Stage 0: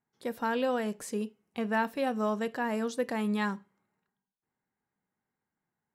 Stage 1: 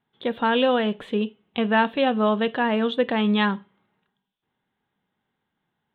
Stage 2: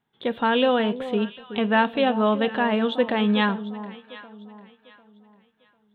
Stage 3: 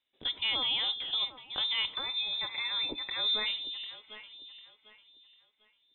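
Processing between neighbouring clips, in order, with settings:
FFT filter 2.2 kHz 0 dB, 3.5 kHz +11 dB, 5.1 kHz -29 dB; trim +9 dB
echo whose repeats swap between lows and highs 374 ms, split 1 kHz, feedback 55%, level -12 dB
peak limiter -15.5 dBFS, peak gain reduction 7.5 dB; spectral selection erased 1.94–3.46 s, 450–1100 Hz; frequency inversion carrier 3.8 kHz; trim -7 dB

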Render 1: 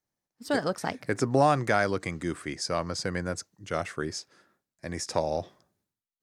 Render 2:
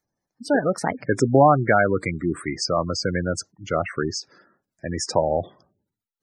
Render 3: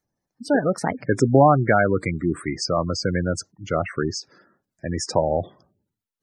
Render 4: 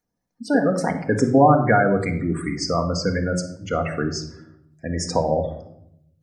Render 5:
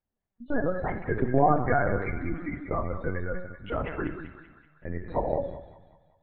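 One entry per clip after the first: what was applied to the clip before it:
spectral gate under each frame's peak -15 dB strong; trim +7.5 dB
bass shelf 330 Hz +4 dB; trim -1 dB
simulated room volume 1900 m³, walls furnished, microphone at 1.8 m; trim -1 dB
LPC vocoder at 8 kHz pitch kept; feedback echo behind a high-pass 192 ms, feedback 50%, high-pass 1.5 kHz, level -6 dB; trim -7 dB

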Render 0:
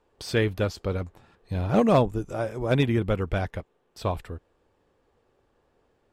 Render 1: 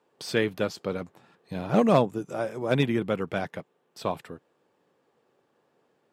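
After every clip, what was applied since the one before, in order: Chebyshev high-pass 150 Hz, order 3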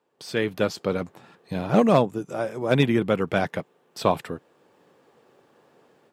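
level rider gain up to 14 dB; trim -3.5 dB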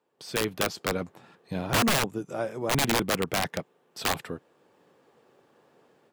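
integer overflow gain 14.5 dB; trim -3 dB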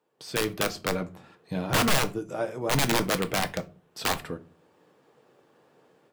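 simulated room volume 150 m³, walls furnished, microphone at 0.53 m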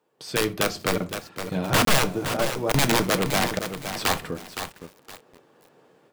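crackling interface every 0.87 s, samples 1024, zero, from 0.98 s; bit-crushed delay 516 ms, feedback 35%, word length 7-bit, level -8 dB; trim +3.5 dB

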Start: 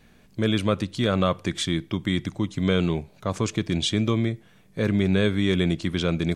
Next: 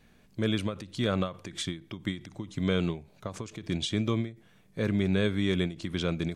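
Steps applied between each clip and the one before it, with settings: endings held to a fixed fall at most 160 dB/s; trim -5 dB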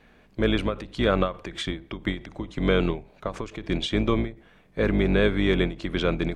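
octave divider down 2 oct, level 0 dB; tone controls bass -9 dB, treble -14 dB; trim +8.5 dB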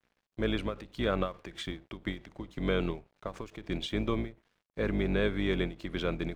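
crossover distortion -52 dBFS; trim -7.5 dB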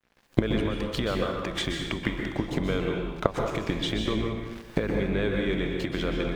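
recorder AGC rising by 74 dB/s; plate-style reverb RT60 1 s, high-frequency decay 0.9×, pre-delay 115 ms, DRR 1.5 dB

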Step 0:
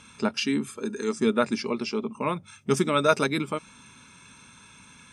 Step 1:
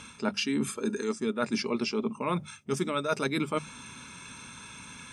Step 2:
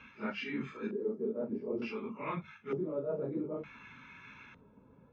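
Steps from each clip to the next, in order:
hum notches 50/100/150/200 Hz; reverse; compression 10:1, threshold -31 dBFS, peak gain reduction 16.5 dB; reverse; trim +5.5 dB
phase randomisation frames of 100 ms; LFO low-pass square 0.55 Hz 520–2100 Hz; trim -9 dB; AAC 48 kbps 16 kHz

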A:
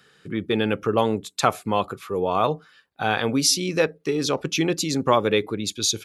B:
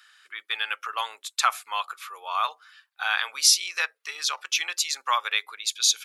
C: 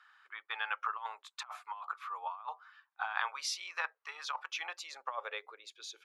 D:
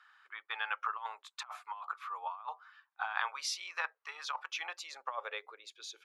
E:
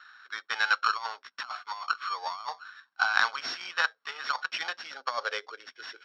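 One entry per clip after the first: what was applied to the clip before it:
high-pass 1.1 kHz 24 dB/octave; trim +2 dB
band-pass sweep 930 Hz -> 370 Hz, 4.39–5.97 s; compressor with a negative ratio -36 dBFS, ratio -0.5
no audible change
sorted samples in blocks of 8 samples; cabinet simulation 130–4800 Hz, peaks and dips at 170 Hz +6 dB, 250 Hz +10 dB, 890 Hz -4 dB, 1.5 kHz +9 dB; trim +7.5 dB

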